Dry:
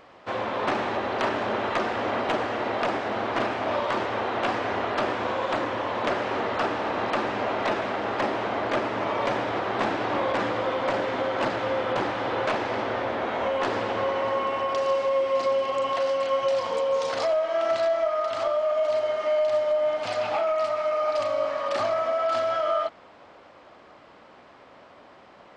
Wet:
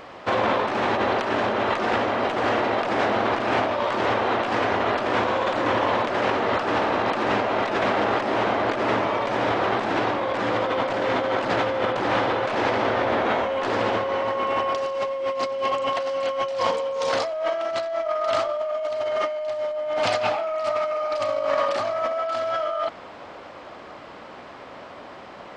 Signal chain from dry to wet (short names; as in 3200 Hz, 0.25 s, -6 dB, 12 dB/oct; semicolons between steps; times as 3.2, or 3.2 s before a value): negative-ratio compressor -30 dBFS, ratio -1; gain +6 dB